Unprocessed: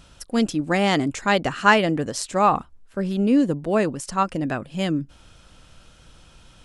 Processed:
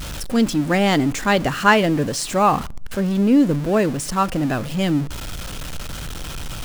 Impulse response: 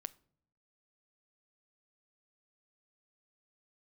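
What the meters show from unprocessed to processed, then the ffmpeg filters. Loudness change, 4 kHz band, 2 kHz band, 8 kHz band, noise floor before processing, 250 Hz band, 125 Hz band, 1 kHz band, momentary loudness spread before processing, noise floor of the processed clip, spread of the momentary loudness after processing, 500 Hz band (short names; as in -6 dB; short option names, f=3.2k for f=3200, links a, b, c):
+3.0 dB, +3.0 dB, +1.5 dB, +5.5 dB, -52 dBFS, +4.0 dB, +5.5 dB, +1.5 dB, 9 LU, -30 dBFS, 16 LU, +2.5 dB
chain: -filter_complex "[0:a]aeval=exprs='val(0)+0.5*0.0422*sgn(val(0))':c=same,asplit=2[a][b];[1:a]atrim=start_sample=2205,lowshelf=f=260:g=8.5[c];[b][c]afir=irnorm=-1:irlink=0,volume=-1dB[d];[a][d]amix=inputs=2:normalize=0,volume=-3.5dB"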